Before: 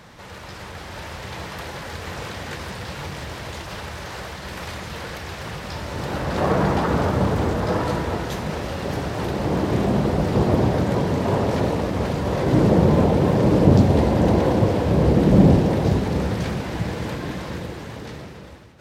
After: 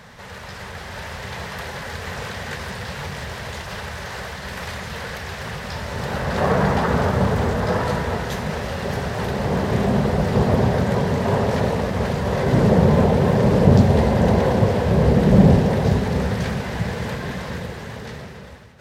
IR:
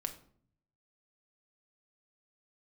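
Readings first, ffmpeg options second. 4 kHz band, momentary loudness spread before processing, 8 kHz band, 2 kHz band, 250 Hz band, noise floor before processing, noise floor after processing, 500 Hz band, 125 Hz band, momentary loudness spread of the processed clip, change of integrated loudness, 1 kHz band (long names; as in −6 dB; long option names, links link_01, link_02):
+1.5 dB, 17 LU, +1.5 dB, +4.0 dB, 0.0 dB, −38 dBFS, −36 dBFS, +1.0 dB, +1.5 dB, 16 LU, 0.0 dB, +1.5 dB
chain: -af "superequalizer=6b=0.355:11b=1.41,volume=1.5dB"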